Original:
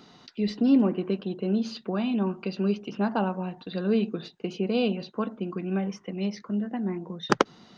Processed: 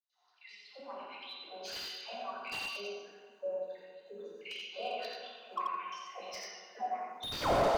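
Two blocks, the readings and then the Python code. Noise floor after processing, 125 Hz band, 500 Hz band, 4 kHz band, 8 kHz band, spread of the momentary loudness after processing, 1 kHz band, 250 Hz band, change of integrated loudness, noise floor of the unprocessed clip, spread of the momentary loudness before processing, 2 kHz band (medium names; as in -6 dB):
-68 dBFS, under -15 dB, -7.5 dB, -2.0 dB, no reading, 12 LU, -2.0 dB, -25.0 dB, -11.5 dB, -55 dBFS, 9 LU, -5.0 dB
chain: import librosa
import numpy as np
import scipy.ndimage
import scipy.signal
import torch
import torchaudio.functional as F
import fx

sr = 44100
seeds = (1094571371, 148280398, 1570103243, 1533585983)

p1 = fx.fade_in_head(x, sr, length_s=1.94)
p2 = fx.level_steps(p1, sr, step_db=20)
p3 = fx.spec_box(p2, sr, start_s=2.84, length_s=1.52, low_hz=560.0, high_hz=5800.0, gain_db=-19)
p4 = fx.dynamic_eq(p3, sr, hz=3100.0, q=1.7, threshold_db=-55.0, ratio=4.0, max_db=4)
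p5 = fx.filter_lfo_highpass(p4, sr, shape='saw_up', hz=1.5, low_hz=530.0, high_hz=4300.0, q=6.8)
p6 = scipy.signal.sosfilt(scipy.signal.butter(2, 130.0, 'highpass', fs=sr, output='sos'), p5)
p7 = fx.high_shelf(p6, sr, hz=4600.0, db=10.5)
p8 = fx.dispersion(p7, sr, late='lows', ms=136.0, hz=810.0)
p9 = p8 + fx.echo_single(p8, sr, ms=86, db=-3.5, dry=0)
p10 = fx.rev_plate(p9, sr, seeds[0], rt60_s=1.7, hf_ratio=0.6, predelay_ms=0, drr_db=-3.0)
p11 = fx.slew_limit(p10, sr, full_power_hz=68.0)
y = p11 * librosa.db_to_amplitude(-4.5)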